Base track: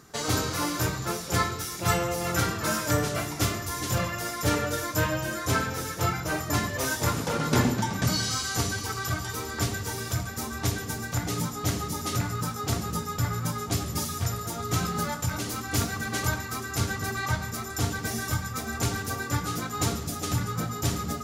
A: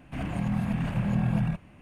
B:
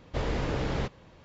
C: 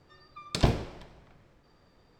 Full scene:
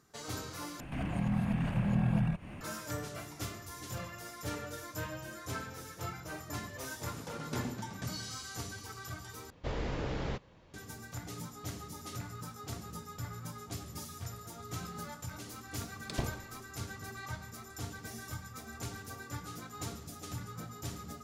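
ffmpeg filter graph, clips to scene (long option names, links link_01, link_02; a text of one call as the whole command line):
ffmpeg -i bed.wav -i cue0.wav -i cue1.wav -i cue2.wav -filter_complex "[0:a]volume=-14dB[link_01];[1:a]acompressor=mode=upward:threshold=-30dB:ratio=2.5:attack=3.2:release=140:knee=2.83:detection=peak[link_02];[link_01]asplit=3[link_03][link_04][link_05];[link_03]atrim=end=0.804[link_06];[link_02]atrim=end=1.81,asetpts=PTS-STARTPTS,volume=-3.5dB[link_07];[link_04]atrim=start=2.606:end=9.504[link_08];[2:a]atrim=end=1.24,asetpts=PTS-STARTPTS,volume=-6dB[link_09];[link_05]atrim=start=10.736[link_10];[3:a]atrim=end=2.19,asetpts=PTS-STARTPTS,volume=-12dB,afade=type=in:duration=0.004:curve=hsin,afade=type=out:start_time=2.186:duration=0.004:curve=hsin,adelay=15550[link_11];[link_06][link_07]acrossfade=duration=0.004:curve1=hsin:curve2=hsin[link_12];[link_12][link_08]acrossfade=duration=0.004:curve1=hsin:curve2=hsin[link_13];[link_13][link_09]acrossfade=duration=0.004:curve1=hsin:curve2=hsin[link_14];[link_14][link_10]acrossfade=duration=0.004:curve1=hsin:curve2=hsin[link_15];[link_15][link_11]amix=inputs=2:normalize=0" out.wav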